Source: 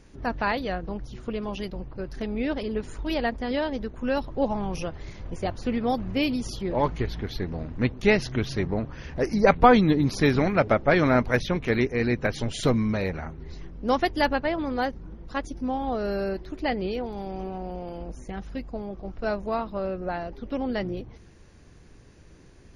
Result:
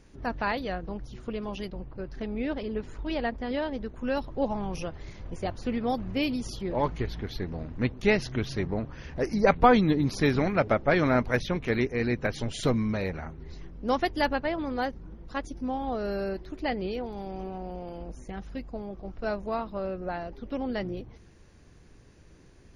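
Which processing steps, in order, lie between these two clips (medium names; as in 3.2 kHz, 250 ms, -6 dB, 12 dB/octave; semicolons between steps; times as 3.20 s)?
1.67–3.86 s: distance through air 99 m; trim -3 dB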